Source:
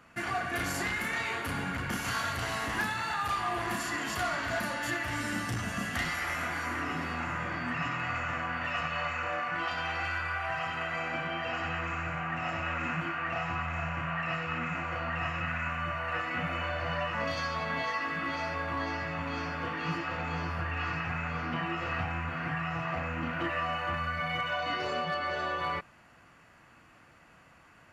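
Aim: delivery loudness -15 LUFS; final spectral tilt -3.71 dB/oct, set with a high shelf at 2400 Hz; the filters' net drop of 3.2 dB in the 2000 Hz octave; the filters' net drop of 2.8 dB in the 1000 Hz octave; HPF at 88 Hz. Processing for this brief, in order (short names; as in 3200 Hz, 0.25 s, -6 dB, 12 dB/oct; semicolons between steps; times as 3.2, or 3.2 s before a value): HPF 88 Hz; bell 1000 Hz -3 dB; bell 2000 Hz -5.5 dB; high shelf 2400 Hz +5 dB; gain +19.5 dB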